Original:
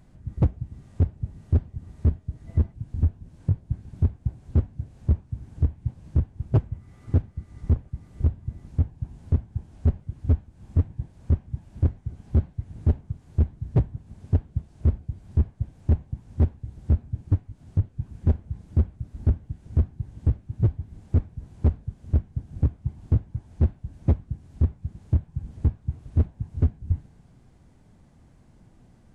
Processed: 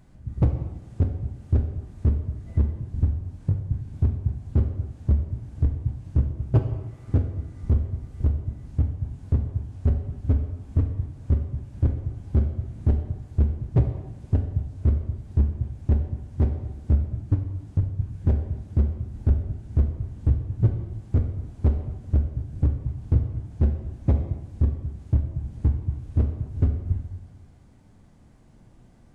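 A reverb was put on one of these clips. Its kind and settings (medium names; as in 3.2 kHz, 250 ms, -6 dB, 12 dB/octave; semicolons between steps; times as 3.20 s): plate-style reverb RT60 1.2 s, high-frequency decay 0.95×, DRR 4.5 dB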